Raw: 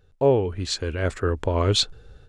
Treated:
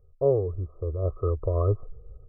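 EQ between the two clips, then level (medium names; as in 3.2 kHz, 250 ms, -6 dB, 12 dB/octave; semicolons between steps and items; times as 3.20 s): brick-wall FIR low-pass 1.3 kHz; bass shelf 130 Hz +6.5 dB; static phaser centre 880 Hz, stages 6; -3.0 dB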